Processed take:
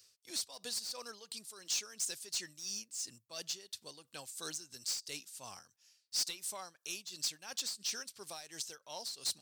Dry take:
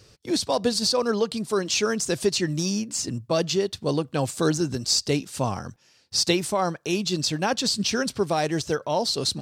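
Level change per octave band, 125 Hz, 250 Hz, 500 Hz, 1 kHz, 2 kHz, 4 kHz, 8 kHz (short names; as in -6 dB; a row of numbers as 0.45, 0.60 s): -34.0, -31.5, -28.5, -23.0, -17.0, -13.0, -9.0 dB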